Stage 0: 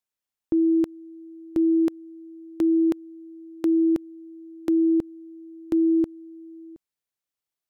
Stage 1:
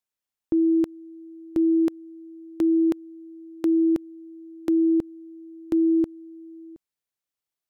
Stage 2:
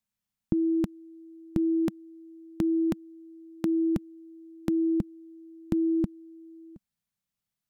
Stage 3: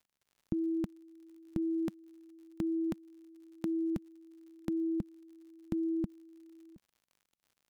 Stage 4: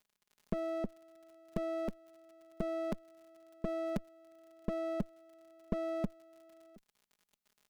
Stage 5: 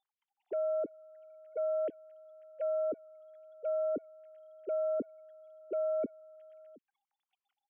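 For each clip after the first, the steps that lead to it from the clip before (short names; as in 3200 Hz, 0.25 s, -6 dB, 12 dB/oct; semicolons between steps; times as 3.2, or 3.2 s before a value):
nothing audible
resonant low shelf 260 Hz +8.5 dB, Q 3
crackle 87/s -48 dBFS; gain -7.5 dB
minimum comb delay 4.8 ms; gain +2 dB
sine-wave speech; gain +3.5 dB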